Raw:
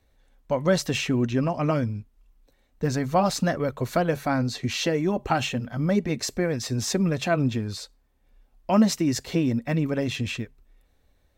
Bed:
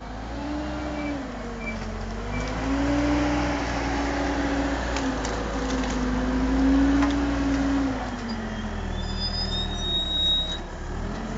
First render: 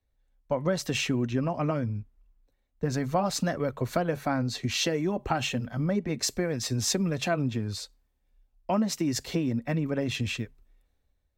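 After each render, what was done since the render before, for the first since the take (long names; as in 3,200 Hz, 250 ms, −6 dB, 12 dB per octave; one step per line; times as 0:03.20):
downward compressor 4 to 1, threshold −24 dBFS, peak gain reduction 9 dB
multiband upward and downward expander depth 40%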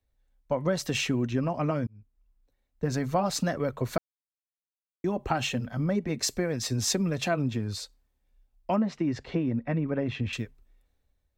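0:01.87–0:02.89: fade in equal-power
0:03.98–0:05.04: silence
0:08.76–0:10.33: low-pass filter 2,300 Hz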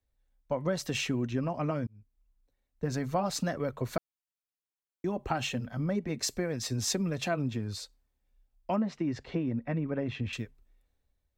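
level −3.5 dB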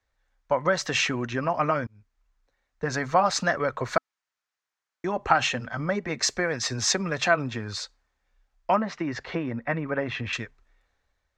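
drawn EQ curve 260 Hz 0 dB, 1,300 Hz +15 dB, 1,800 Hz +15 dB, 2,800 Hz +8 dB, 6,600 Hz +8 dB, 12,000 Hz −13 dB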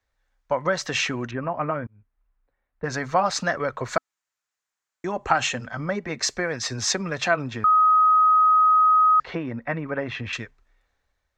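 0:01.31–0:02.84: high-frequency loss of the air 500 metres
0:03.88–0:05.71: parametric band 7,300 Hz +8 dB 0.39 octaves
0:07.64–0:09.20: beep over 1,260 Hz −13.5 dBFS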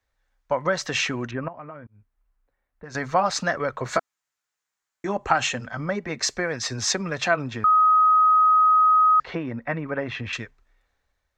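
0:01.48–0:02.95: downward compressor 2 to 1, threshold −46 dBFS
0:03.84–0:05.17: double-tracking delay 15 ms −4.5 dB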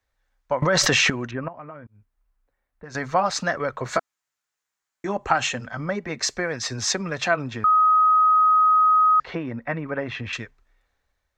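0:00.62–0:01.10: envelope flattener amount 100%
0:08.35–0:09.23: low-pass filter 7,700 Hz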